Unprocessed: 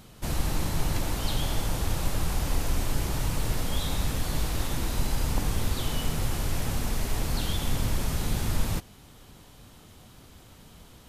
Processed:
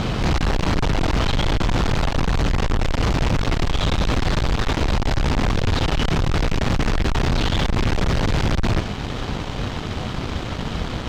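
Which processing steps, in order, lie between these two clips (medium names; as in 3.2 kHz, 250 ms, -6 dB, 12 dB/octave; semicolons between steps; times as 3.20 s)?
gain riding; fuzz box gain 47 dB, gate -55 dBFS; distance through air 170 m; trim -3 dB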